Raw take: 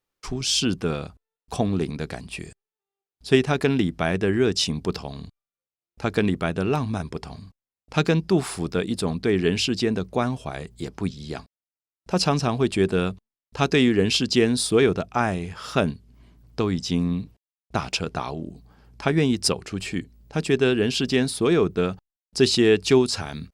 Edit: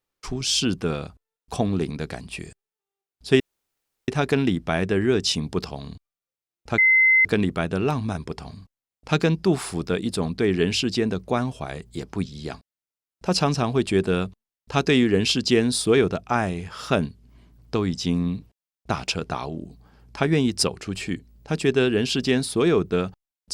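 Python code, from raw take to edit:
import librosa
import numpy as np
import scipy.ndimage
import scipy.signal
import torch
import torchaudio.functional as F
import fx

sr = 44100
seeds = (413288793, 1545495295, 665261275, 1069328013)

y = fx.edit(x, sr, fx.insert_room_tone(at_s=3.4, length_s=0.68),
    fx.insert_tone(at_s=6.1, length_s=0.47, hz=2060.0, db=-13.0), tone=tone)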